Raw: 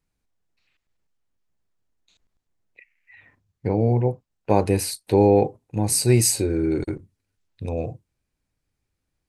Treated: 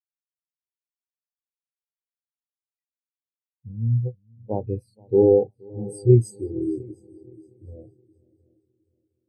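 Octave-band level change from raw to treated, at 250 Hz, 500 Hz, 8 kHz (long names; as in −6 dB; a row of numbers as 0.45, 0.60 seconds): −3.5 dB, 0.0 dB, below −20 dB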